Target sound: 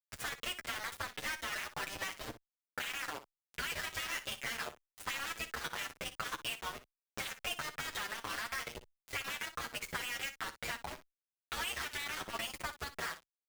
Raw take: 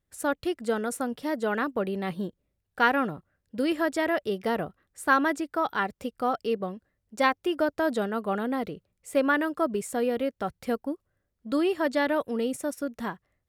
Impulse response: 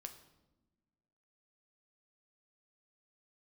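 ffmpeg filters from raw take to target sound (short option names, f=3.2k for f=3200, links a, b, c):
-filter_complex "[0:a]aemphasis=mode=reproduction:type=riaa,afftfilt=real='re*lt(hypot(re,im),0.0708)':imag='im*lt(hypot(re,im),0.0708)':win_size=1024:overlap=0.75,equalizer=f=2.3k:t=o:w=1.9:g=12,bandreject=f=4.2k:w=8.9,bandreject=f=371:t=h:w=4,bandreject=f=742:t=h:w=4,bandreject=f=1.113k:t=h:w=4,areverse,acompressor=mode=upward:threshold=-42dB:ratio=2.5,areverse,alimiter=level_in=4dB:limit=-24dB:level=0:latency=1:release=42,volume=-4dB,acompressor=threshold=-44dB:ratio=4,aeval=exprs='0.0398*(cos(1*acos(clip(val(0)/0.0398,-1,1)))-cos(1*PI/2))+0.000631*(cos(2*acos(clip(val(0)/0.0398,-1,1)))-cos(2*PI/2))+0.000316*(cos(3*acos(clip(val(0)/0.0398,-1,1)))-cos(3*PI/2))+0.000708*(cos(4*acos(clip(val(0)/0.0398,-1,1)))-cos(4*PI/2))+0.00141*(cos(5*acos(clip(val(0)/0.0398,-1,1)))-cos(5*PI/2))':c=same,aeval=exprs='val(0)*gte(abs(val(0)),0.00794)':c=same,aecho=1:1:13|60:0.251|0.211,asplit=2[a][b];[b]adelay=7.4,afreqshift=0.98[c];[a][c]amix=inputs=2:normalize=1,volume=10.5dB"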